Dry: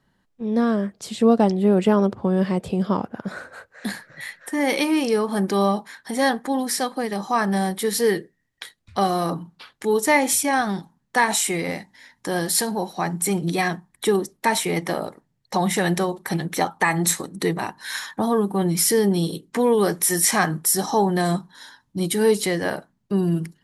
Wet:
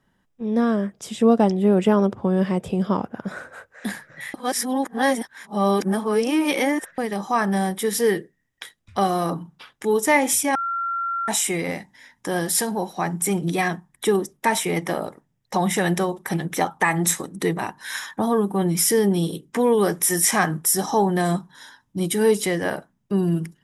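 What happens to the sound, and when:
4.34–6.98 s: reverse
10.55–11.28 s: bleep 1.37 kHz -22.5 dBFS
whole clip: band-stop 4.3 kHz, Q 5.6; de-hum 71.78 Hz, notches 2

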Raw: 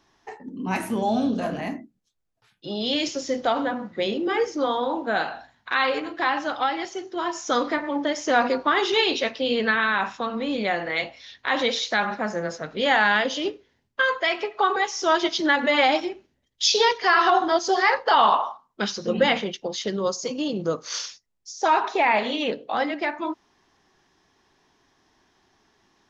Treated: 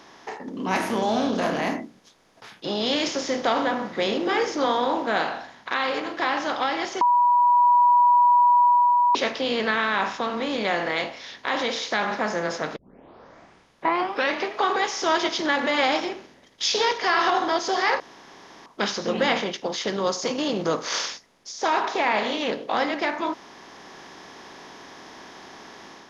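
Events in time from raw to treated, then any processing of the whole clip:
7.01–9.15 s: bleep 972 Hz -10.5 dBFS
12.76 s: tape start 1.81 s
18.00–18.66 s: room tone
whole clip: spectral levelling over time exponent 0.6; level rider gain up to 5.5 dB; trim -8 dB

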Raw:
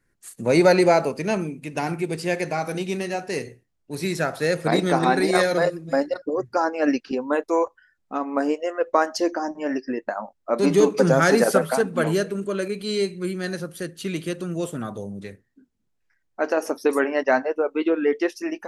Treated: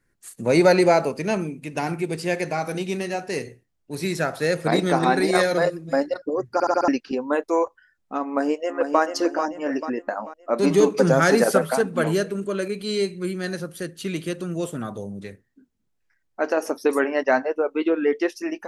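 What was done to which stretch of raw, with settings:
6.53 s: stutter in place 0.07 s, 5 plays
8.25–9.01 s: echo throw 440 ms, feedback 45%, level -6.5 dB

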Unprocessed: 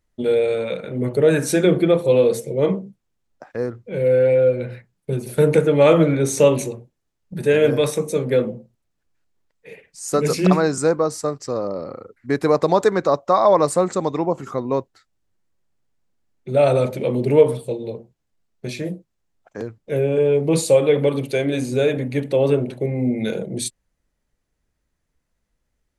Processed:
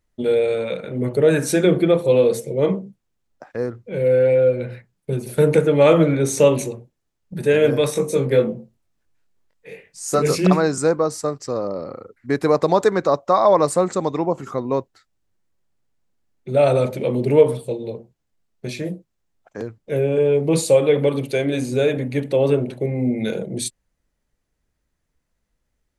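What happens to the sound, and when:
7.93–10.38 s: doubling 22 ms -3.5 dB

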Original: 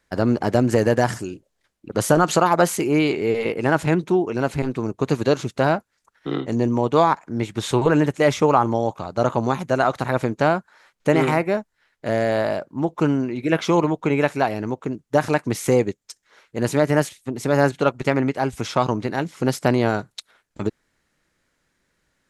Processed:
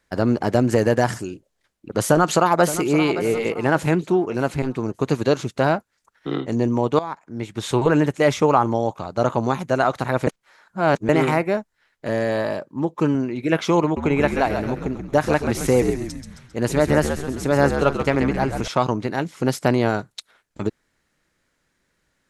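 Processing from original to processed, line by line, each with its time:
2.06–2.89 s: echo throw 570 ms, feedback 40%, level -12.5 dB
6.99–7.81 s: fade in, from -16.5 dB
10.27–11.09 s: reverse
12.07–13.15 s: comb of notches 710 Hz
13.83–18.68 s: frequency-shifting echo 133 ms, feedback 49%, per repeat -72 Hz, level -7 dB

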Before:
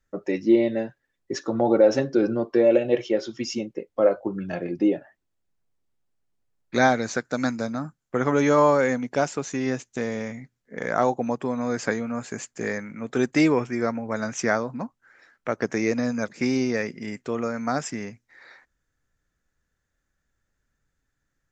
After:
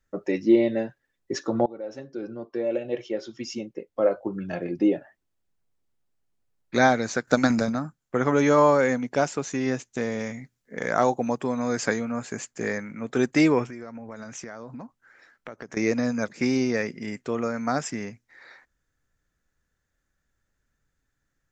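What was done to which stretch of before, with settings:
1.66–4.94 s: fade in, from -23.5 dB
7.27–7.80 s: transient shaper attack +8 dB, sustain +12 dB
10.19–12.05 s: treble shelf 3.9 kHz +6 dB
13.68–15.77 s: compression 8:1, threshold -35 dBFS

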